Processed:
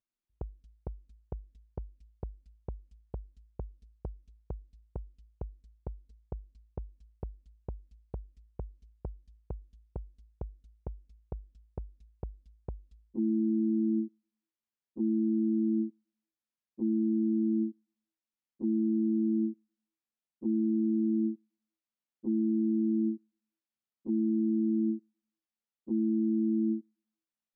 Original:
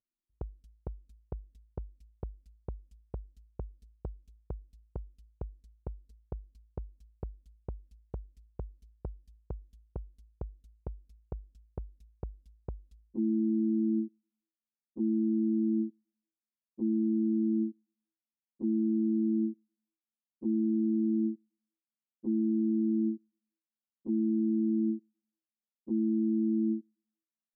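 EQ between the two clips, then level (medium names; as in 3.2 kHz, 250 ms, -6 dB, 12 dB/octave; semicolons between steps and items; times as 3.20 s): dynamic bell 930 Hz, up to +5 dB, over -50 dBFS, Q 1.2; distance through air 66 m; 0.0 dB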